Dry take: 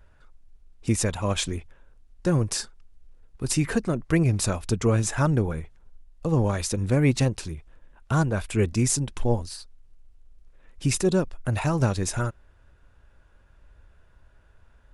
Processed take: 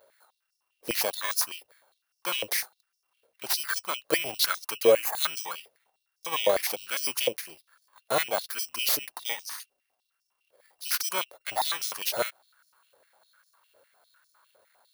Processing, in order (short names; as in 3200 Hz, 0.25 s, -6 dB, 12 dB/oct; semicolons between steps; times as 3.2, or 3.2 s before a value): FFT order left unsorted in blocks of 16 samples; spectral gain 4.92–5.23, 3000–6100 Hz -10 dB; stepped high-pass 9.9 Hz 540–5400 Hz